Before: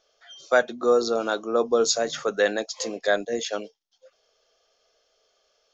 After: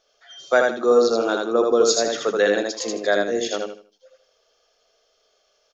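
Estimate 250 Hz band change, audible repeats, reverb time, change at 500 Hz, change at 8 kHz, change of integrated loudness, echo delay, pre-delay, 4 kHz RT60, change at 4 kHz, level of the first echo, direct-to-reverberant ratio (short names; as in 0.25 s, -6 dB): +5.5 dB, 3, none, +4.5 dB, n/a, +4.0 dB, 79 ms, none, none, +3.0 dB, -3.0 dB, none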